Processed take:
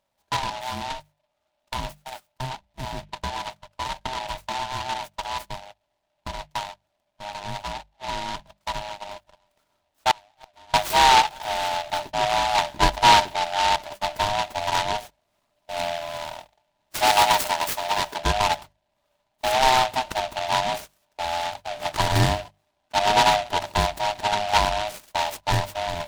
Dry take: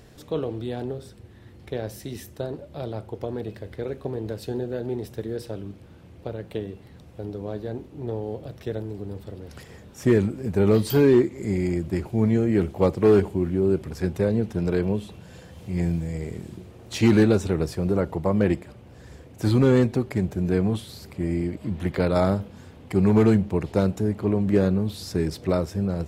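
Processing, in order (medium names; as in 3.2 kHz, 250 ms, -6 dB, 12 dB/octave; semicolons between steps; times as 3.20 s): split-band scrambler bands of 500 Hz; 17.07–18.19 s: RIAA curve recording; gate -33 dBFS, range -26 dB; peaking EQ 680 Hz -9 dB 0.48 oct; hum notches 50/100/150/200 Hz; 10.11–10.74 s: inverted gate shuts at -27 dBFS, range -30 dB; Chebyshev shaper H 7 -33 dB, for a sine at -6.5 dBFS; delay time shaken by noise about 2.4 kHz, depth 0.097 ms; trim +4.5 dB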